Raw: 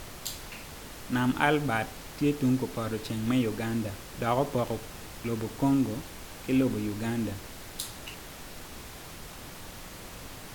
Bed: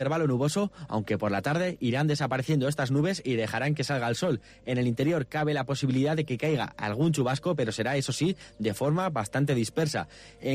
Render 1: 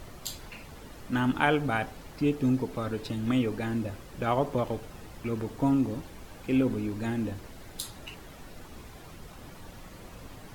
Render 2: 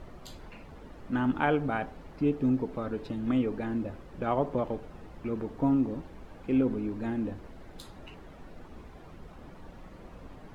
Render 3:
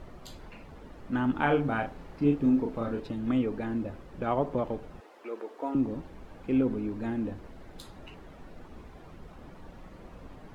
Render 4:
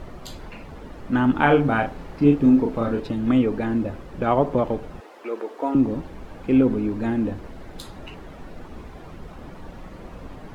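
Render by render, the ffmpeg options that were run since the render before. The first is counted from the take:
-af "afftdn=nr=9:nf=-45"
-af "lowpass=f=1.2k:p=1,equalizer=f=110:w=3.3:g=-7"
-filter_complex "[0:a]asettb=1/sr,asplit=3[a][b][c];[a]atrim=end=1.364[d];[b]atrim=start=1.36:end=3,asetpts=PTS-STARTPTS,afade=t=in:d=0.004:c=qsin,afade=t=out:st=1.636:d=0.004:c=qsin,asplit=2[e][f];[f]adelay=35,volume=-4.5dB[g];[e][g]amix=inputs=2:normalize=0,atrim=end_sample=72324[h];[c]atrim=start=2.996[i];[d][h]acrossfade=d=0.004:c1=hsin:c2=qsin[j];[j][i]acrossfade=d=0.004:c1=qsin:c2=hsin,asettb=1/sr,asplit=3[k][l][m];[k]atrim=end=5.004[n];[l]atrim=start=5:end=5.75,asetpts=PTS-STARTPTS,afade=t=in:d=0.004:c=qsin,afade=t=out:st=0.746:d=0.004:c=qsin,highpass=f=380:w=0.5412,highpass=f=380:w=1.3066[o];[m]atrim=start=5.746[p];[n][o]acrossfade=d=0.004:c1=hsin:c2=qsin[q];[q][p]acrossfade=d=0.004:c1=qsin:c2=hsin"
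-af "volume=8.5dB"

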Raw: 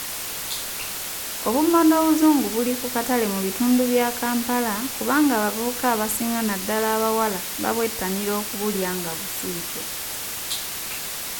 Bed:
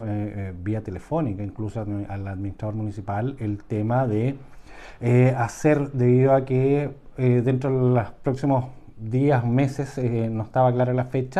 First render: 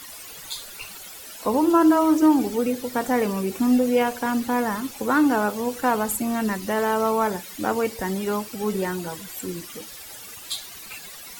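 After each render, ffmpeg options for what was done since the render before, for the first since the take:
-af "afftdn=nr=14:nf=-31"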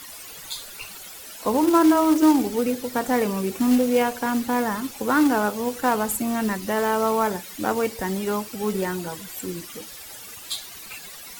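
-af "acrusher=bits=4:mode=log:mix=0:aa=0.000001"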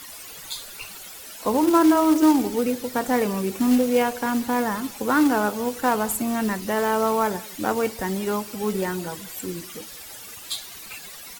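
-filter_complex "[0:a]asplit=2[a][b];[b]adelay=186.6,volume=-22dB,highshelf=f=4k:g=-4.2[c];[a][c]amix=inputs=2:normalize=0"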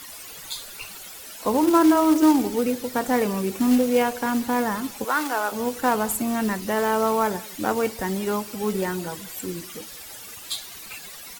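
-filter_complex "[0:a]asettb=1/sr,asplit=3[a][b][c];[a]atrim=end=5.044[d];[b]atrim=start=5.04:end=5.52,asetpts=PTS-STARTPTS,afade=t=in:d=0.004:c=qsin,afade=t=out:st=0.476:d=0.004:c=qsin,highpass=610[e];[c]atrim=start=5.516[f];[d][e]acrossfade=d=0.004:c1=hsin:c2=qsin[g];[g][f]acrossfade=d=0.004:c1=qsin:c2=hsin"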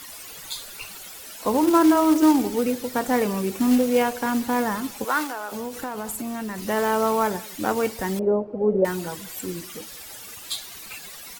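-filter_complex "[0:a]asettb=1/sr,asplit=3[a][b][c];[a]atrim=end=5.244[d];[b]atrim=start=5.24:end=6.58,asetpts=PTS-STARTPTS,afade=t=in:d=0.004:c=qsin,afade=t=out:st=1.336:d=0.004:c=qsin,acompressor=threshold=-27dB:ratio=6:attack=3.2:release=140:knee=1:detection=peak[e];[c]atrim=start=6.576[f];[d][e]acrossfade=d=0.004:c1=hsin:c2=qsin[g];[g][f]acrossfade=d=0.004:c1=qsin:c2=hsin,asettb=1/sr,asplit=3[h][i][j];[h]atrim=end=8.194[k];[i]atrim=start=8.19:end=8.85,asetpts=PTS-STARTPTS,afade=t=in:d=0.004:c=qsin,afade=t=out:st=0.656:d=0.004:c=qsin,lowpass=f=550:t=q:w=3.6[l];[j]atrim=start=8.846[m];[k][l]acrossfade=d=0.004:c1=hsin:c2=qsin[n];[n][m]acrossfade=d=0.004:c1=qsin:c2=hsin"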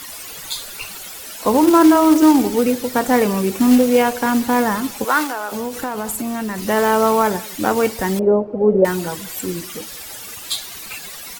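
-af "volume=6.5dB,alimiter=limit=-3dB:level=0:latency=1"

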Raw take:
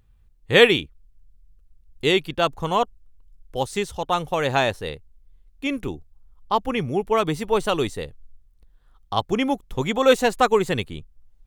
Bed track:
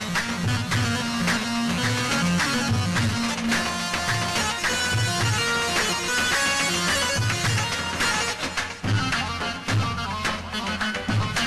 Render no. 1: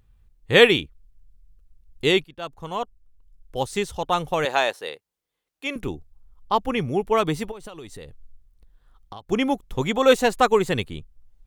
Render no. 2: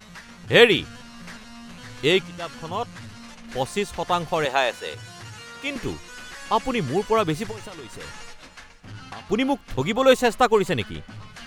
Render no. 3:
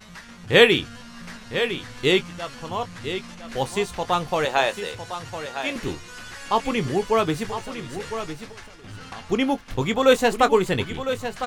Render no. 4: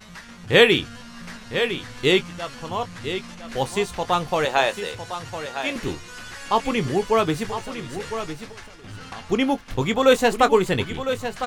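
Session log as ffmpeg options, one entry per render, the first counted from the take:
-filter_complex "[0:a]asettb=1/sr,asplit=3[a][b][c];[a]atrim=end=4.454[d];[b]atrim=start=4.45:end=5.76,asetpts=PTS-STARTPTS,afade=t=in:d=0.004:c=qsin,afade=t=out:st=1.306:d=0.004:c=qsin,highpass=450[e];[c]atrim=start=5.756[f];[d][e]acrossfade=d=0.004:c1=hsin:c2=qsin[g];[g][f]acrossfade=d=0.004:c1=qsin:c2=hsin,asplit=3[h][i][j];[h]afade=t=out:st=7.5:d=0.02[k];[i]acompressor=threshold=-34dB:ratio=20:attack=3.2:release=140:knee=1:detection=peak,afade=t=in:st=7.5:d=0.02,afade=t=out:st=9.3:d=0.02[l];[j]afade=t=in:st=9.3:d=0.02[m];[k][l][m]amix=inputs=3:normalize=0,asplit=2[n][o];[n]atrim=end=2.24,asetpts=PTS-STARTPTS,afade=t=out:st=2.236:d=0.004:c=hsin:silence=0.125893[p];[o]atrim=start=2.24,asetpts=PTS-STARTPTS,afade=t=in:d=1.55:silence=0.125893[q];[p][q]concat=n=2:v=0:a=1"
-filter_complex "[1:a]volume=-17.5dB[a];[0:a][a]amix=inputs=2:normalize=0"
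-filter_complex "[0:a]asplit=2[a][b];[b]adelay=22,volume=-12dB[c];[a][c]amix=inputs=2:normalize=0,asplit=2[d][e];[e]aecho=0:1:1006:0.316[f];[d][f]amix=inputs=2:normalize=0"
-af "volume=1dB,alimiter=limit=-3dB:level=0:latency=1"

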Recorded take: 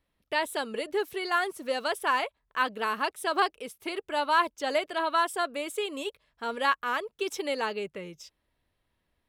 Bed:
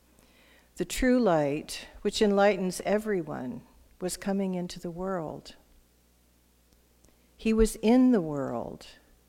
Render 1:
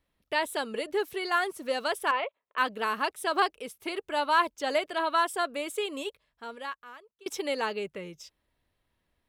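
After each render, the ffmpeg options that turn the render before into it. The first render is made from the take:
-filter_complex "[0:a]asettb=1/sr,asplit=3[a][b][c];[a]atrim=end=2.114[d];[b]atrim=start=2.11:end=2.58,asetpts=PTS-STARTPTS,afade=t=in:d=0.004:c=qsin,afade=t=out:st=0.466:d=0.004:c=qsin,highpass=410,equalizer=f=540:t=q:w=4:g=6,equalizer=f=830:t=q:w=4:g=-5,equalizer=f=1.6k:t=q:w=4:g=-7,lowpass=f=3.1k:w=0.5412,lowpass=f=3.1k:w=1.3066[e];[c]atrim=start=2.576[f];[d][e]acrossfade=d=0.004:c1=hsin:c2=qsin[g];[g][f]acrossfade=d=0.004:c1=qsin:c2=hsin,asplit=2[h][i];[h]atrim=end=7.26,asetpts=PTS-STARTPTS,afade=t=out:st=5.97:d=1.29:c=qua:silence=0.0668344[j];[i]atrim=start=7.26,asetpts=PTS-STARTPTS,afade=t=in:d=0.004:c=hsin:silence=0.0668344[k];[j][k]concat=n=2:v=0:a=1"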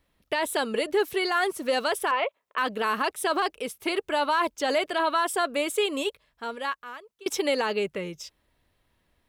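-af "acontrast=75,alimiter=limit=-16dB:level=0:latency=1:release=23"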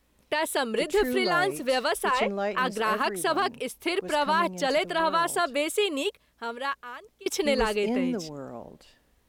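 -filter_complex "[1:a]volume=-7dB[a];[0:a][a]amix=inputs=2:normalize=0"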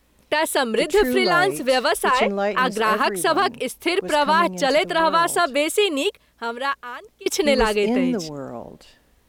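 -af "volume=6.5dB"

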